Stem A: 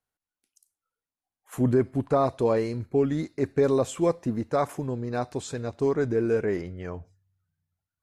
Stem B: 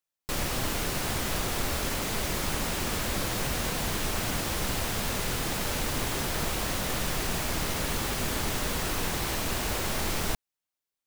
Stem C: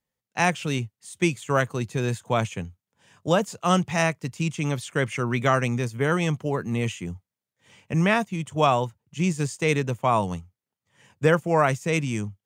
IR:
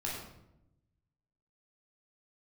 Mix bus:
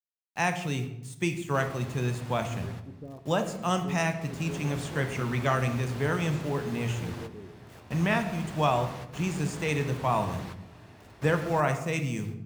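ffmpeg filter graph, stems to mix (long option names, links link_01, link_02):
-filter_complex "[0:a]acrossover=split=450[link_01][link_02];[link_01]aeval=exprs='val(0)*(1-1/2+1/2*cos(2*PI*1.4*n/s))':channel_layout=same[link_03];[link_02]aeval=exprs='val(0)*(1-1/2-1/2*cos(2*PI*1.4*n/s))':channel_layout=same[link_04];[link_03][link_04]amix=inputs=2:normalize=0,adelay=900,volume=-15.5dB,asplit=2[link_05][link_06];[link_06]volume=-12dB[link_07];[1:a]highpass=85,aemphasis=mode=reproduction:type=75kf,adelay=1250,volume=-0.5dB,afade=type=out:start_time=2.59:duration=0.53:silence=0.334965,afade=type=in:start_time=4.13:duration=0.42:silence=0.237137,asplit=2[link_08][link_09];[link_09]volume=-13.5dB[link_10];[2:a]acrusher=bits=7:mix=0:aa=0.000001,volume=-8dB,asplit=3[link_11][link_12][link_13];[link_12]volume=-7dB[link_14];[link_13]apad=whole_len=543153[link_15];[link_08][link_15]sidechaingate=range=-33dB:threshold=-56dB:ratio=16:detection=peak[link_16];[3:a]atrim=start_sample=2205[link_17];[link_07][link_10][link_14]amix=inputs=3:normalize=0[link_18];[link_18][link_17]afir=irnorm=-1:irlink=0[link_19];[link_05][link_16][link_11][link_19]amix=inputs=4:normalize=0"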